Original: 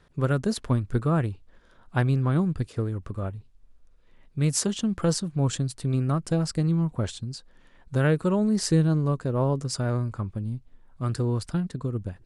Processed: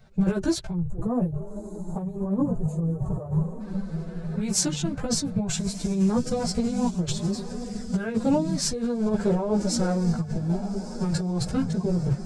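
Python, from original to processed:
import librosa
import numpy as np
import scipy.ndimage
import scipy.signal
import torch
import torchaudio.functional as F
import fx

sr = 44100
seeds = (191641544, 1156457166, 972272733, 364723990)

y = fx.graphic_eq_31(x, sr, hz=(100, 200, 1250, 2000, 3150, 10000), db=(12, -11, -12, -3, -7, -10))
y = fx.echo_diffused(y, sr, ms=1280, feedback_pct=54, wet_db=-15.0)
y = fx.spec_box(y, sr, start_s=0.74, length_s=2.86, low_hz=1300.0, high_hz=6200.0, gain_db=-20)
y = fx.over_compress(y, sr, threshold_db=-25.0, ratio=-0.5)
y = fx.pitch_keep_formants(y, sr, semitones=7.0)
y = fx.chorus_voices(y, sr, voices=4, hz=0.5, base_ms=14, depth_ms=4.3, mix_pct=50)
y = y * 10.0 ** (6.0 / 20.0)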